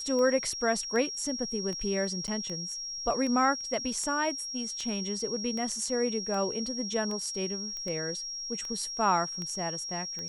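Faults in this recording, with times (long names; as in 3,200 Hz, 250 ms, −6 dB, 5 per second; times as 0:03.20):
scratch tick 78 rpm −25 dBFS
whistle 5,600 Hz −35 dBFS
0:02.27–0:02.28: drop-out 9 ms
0:07.77: click −26 dBFS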